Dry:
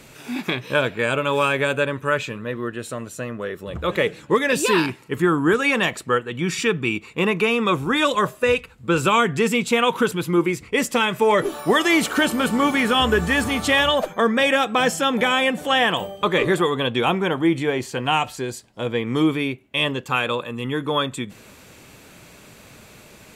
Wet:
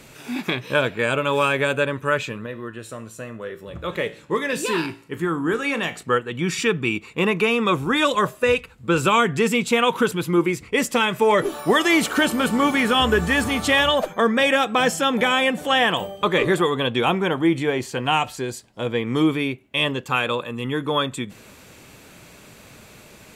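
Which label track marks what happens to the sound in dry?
2.460000	6.030000	tuned comb filter 56 Hz, decay 0.39 s

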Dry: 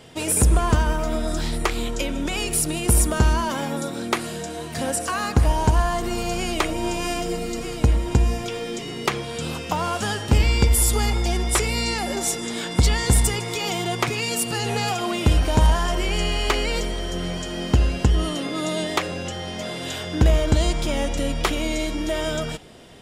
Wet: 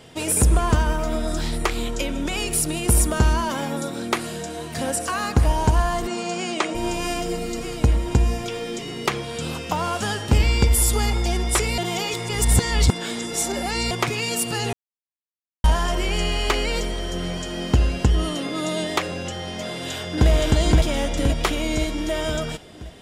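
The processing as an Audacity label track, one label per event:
6.070000	6.750000	elliptic band-pass filter 180–8,000 Hz, stop band 50 dB
11.780000	13.910000	reverse
14.730000	15.640000	silence
19.650000	20.290000	delay throw 520 ms, feedback 55%, level −0.5 dB

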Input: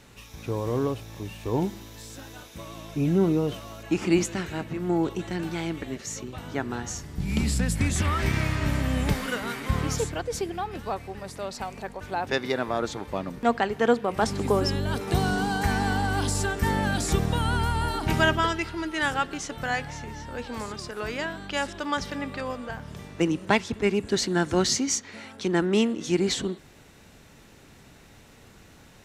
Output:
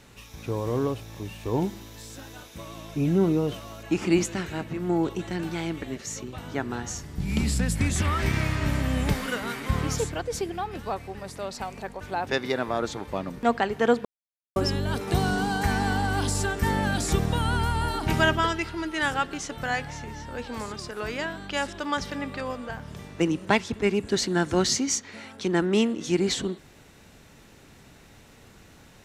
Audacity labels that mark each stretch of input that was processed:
14.050000	14.560000	silence

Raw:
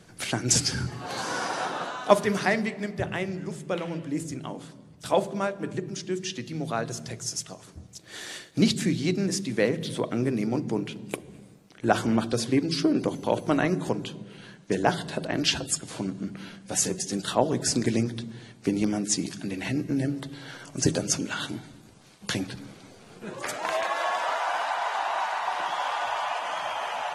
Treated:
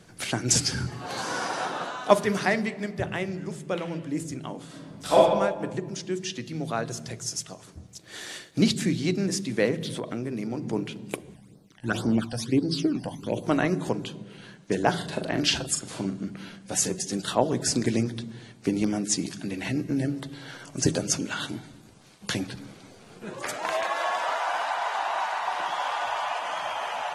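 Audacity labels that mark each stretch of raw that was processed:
4.650000	5.170000	thrown reverb, RT60 1.2 s, DRR −6.5 dB
9.880000	10.730000	downward compressor 5 to 1, threshold −27 dBFS
11.330000	13.420000	all-pass phaser stages 12, 2.7 Hz → 0.97 Hz, lowest notch 380–2,600 Hz
14.900000	16.170000	double-tracking delay 41 ms −8 dB

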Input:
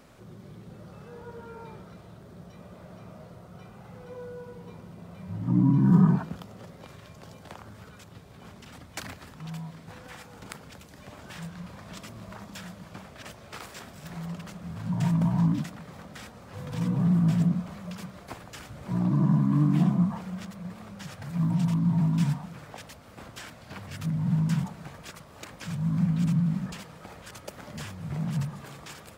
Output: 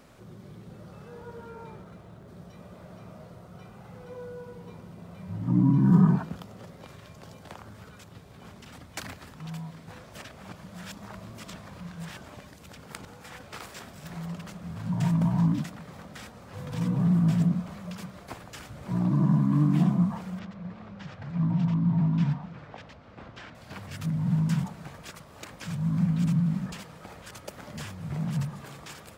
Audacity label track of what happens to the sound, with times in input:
1.490000	2.280000	running median over 9 samples
10.040000	13.430000	reverse
20.390000	23.550000	high-frequency loss of the air 190 metres

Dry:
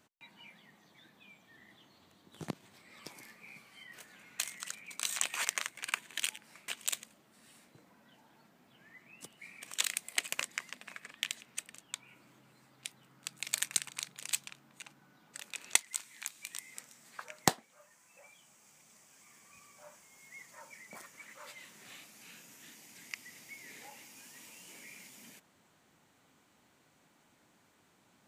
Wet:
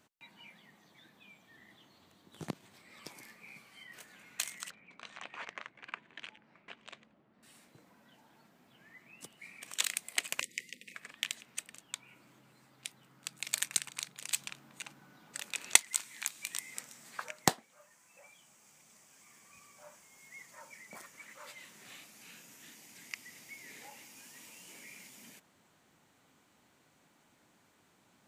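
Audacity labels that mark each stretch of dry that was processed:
4.700000	7.430000	head-to-tape spacing loss at 10 kHz 40 dB
10.400000	10.950000	Chebyshev band-stop filter 520–1,900 Hz, order 5
14.390000	17.310000	clip gain +4.5 dB

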